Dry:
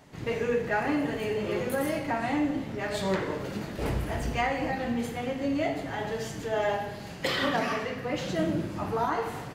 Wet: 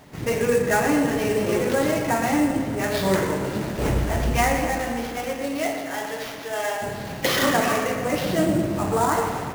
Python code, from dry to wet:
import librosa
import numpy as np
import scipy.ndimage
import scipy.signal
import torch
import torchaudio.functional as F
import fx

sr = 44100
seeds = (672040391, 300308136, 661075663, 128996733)

y = fx.highpass(x, sr, hz=fx.line((4.6, 380.0), (6.81, 1400.0)), slope=6, at=(4.6, 6.81), fade=0.02)
y = fx.sample_hold(y, sr, seeds[0], rate_hz=8500.0, jitter_pct=20)
y = fx.echo_filtered(y, sr, ms=119, feedback_pct=73, hz=3200.0, wet_db=-9.5)
y = y * librosa.db_to_amplitude(6.5)